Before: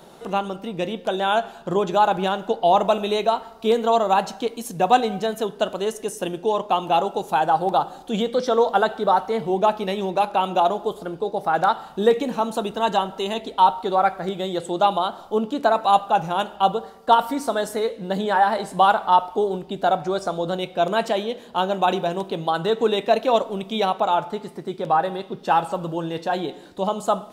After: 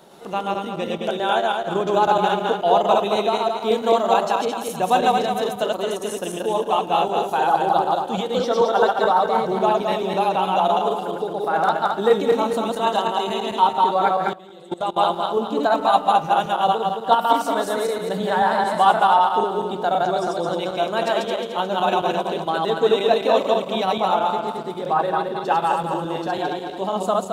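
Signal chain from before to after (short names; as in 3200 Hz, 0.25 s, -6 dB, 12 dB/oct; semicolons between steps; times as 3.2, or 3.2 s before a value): regenerating reverse delay 0.109 s, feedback 63%, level -0.5 dB; 14.33–14.98 level quantiser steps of 20 dB; low shelf 79 Hz -12 dB; gain -2 dB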